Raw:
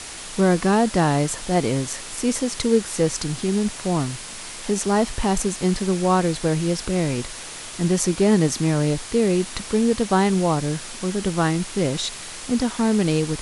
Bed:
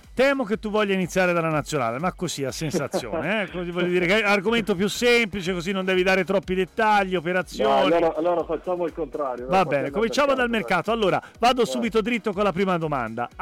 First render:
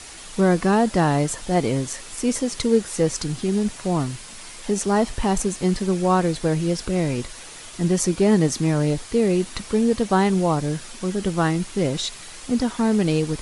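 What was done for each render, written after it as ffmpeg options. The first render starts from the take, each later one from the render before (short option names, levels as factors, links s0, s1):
-af "afftdn=nr=6:nf=-36"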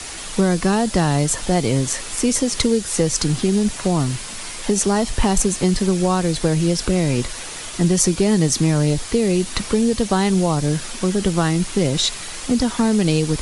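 -filter_complex "[0:a]acrossover=split=130|3000[s0][s1][s2];[s1]acompressor=threshold=0.0631:ratio=6[s3];[s0][s3][s2]amix=inputs=3:normalize=0,alimiter=level_in=2.51:limit=0.891:release=50:level=0:latency=1"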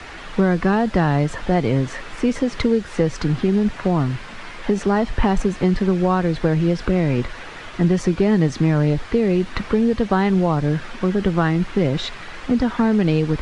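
-af "lowpass=2400,equalizer=f=1600:t=o:w=0.83:g=3.5"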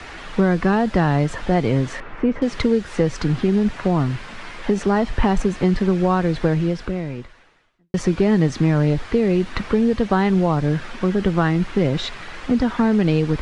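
-filter_complex "[0:a]asettb=1/sr,asplit=3[s0][s1][s2];[s0]atrim=end=2.004[s3];[s1]atrim=start=2:end=2.42,asetpts=PTS-STARTPTS,afade=t=in:d=0.004:c=qsin,afade=t=out:st=0.416:d=0.004:c=qsin,lowpass=1800[s4];[s2]atrim=start=2.416[s5];[s3][s4]acrossfade=d=0.004:c1=hsin:c2=qsin[s6];[s6][s5]acrossfade=d=0.004:c1=qsin:c2=hsin,asplit=2[s7][s8];[s7]atrim=end=7.94,asetpts=PTS-STARTPTS,afade=t=out:st=6.48:d=1.46:c=qua[s9];[s8]atrim=start=7.94,asetpts=PTS-STARTPTS,afade=t=in:d=0.004:c=hsin[s10];[s9][s10]concat=n=2:v=0:a=1"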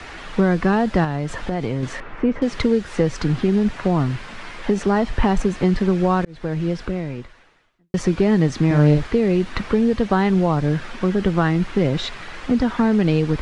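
-filter_complex "[0:a]asettb=1/sr,asplit=3[s0][s1][s2];[s0]atrim=end=1.044[s3];[s1]atrim=start=1.04:end=1.83,asetpts=PTS-STARTPTS,afade=t=in:d=0.004:c=qsin,afade=t=out:st=0.786:d=0.004:c=qsin,acompressor=threshold=0.112:ratio=4:attack=3.2:release=140:knee=1:detection=peak[s4];[s2]atrim=start=1.826[s5];[s3][s4]acrossfade=d=0.004:c1=hsin:c2=qsin[s6];[s6][s5]acrossfade=d=0.004:c1=qsin:c2=hsin,asettb=1/sr,asplit=3[s7][s8][s9];[s7]atrim=end=8.664[s10];[s8]atrim=start=8.66:end=9.07,asetpts=PTS-STARTPTS,afade=t=in:d=0.004:c=qsin,afade=t=out:st=0.406:d=0.004:c=qsin,asplit=2[s11][s12];[s12]adelay=47,volume=0.631[s13];[s11][s13]amix=inputs=2:normalize=0,atrim=end_sample=18081[s14];[s9]atrim=start=9.066[s15];[s10][s14]acrossfade=d=0.004:c1=hsin:c2=qsin[s16];[s16][s15]acrossfade=d=0.004:c1=qsin:c2=hsin,asplit=2[s17][s18];[s17]atrim=end=6.25,asetpts=PTS-STARTPTS,afade=t=out:st=6.246:d=0.004:c=hsin[s19];[s18]atrim=start=6.25,asetpts=PTS-STARTPTS,afade=t=in:d=0.5[s20];[s19][s20]concat=n=2:v=0:a=1"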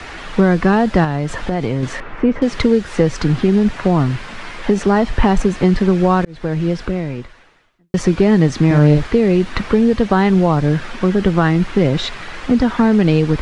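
-af "volume=1.68,alimiter=limit=0.891:level=0:latency=1"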